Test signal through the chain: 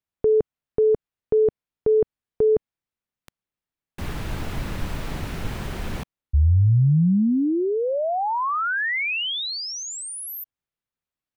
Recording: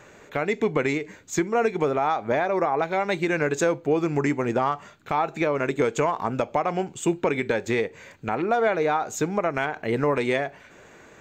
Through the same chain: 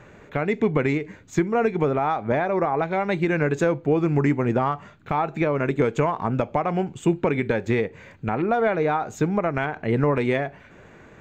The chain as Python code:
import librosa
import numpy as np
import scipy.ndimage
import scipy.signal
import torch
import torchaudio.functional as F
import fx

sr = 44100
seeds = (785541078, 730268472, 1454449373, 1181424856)

y = fx.bass_treble(x, sr, bass_db=8, treble_db=-10)